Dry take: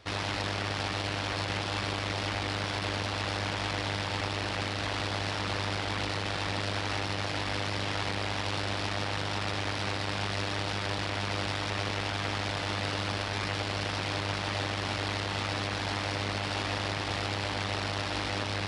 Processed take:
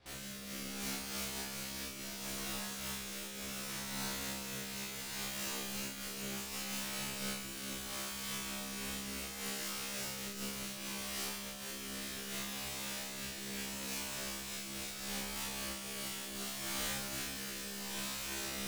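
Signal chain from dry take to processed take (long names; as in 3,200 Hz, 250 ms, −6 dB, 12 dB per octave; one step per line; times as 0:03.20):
low-shelf EQ 250 Hz +5.5 dB
mains-hum notches 60/120/180 Hz
brickwall limiter −23 dBFS, peak gain reduction 6 dB
wrap-around overflow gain 36 dB
rotating-speaker cabinet horn 0.7 Hz
tuned comb filter 67 Hz, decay 1 s, harmonics all, mix 100%
feedback echo with a high-pass in the loop 352 ms, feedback 79%, high-pass 710 Hz, level −6 dB
amplitude modulation by smooth noise, depth 65%
level +16 dB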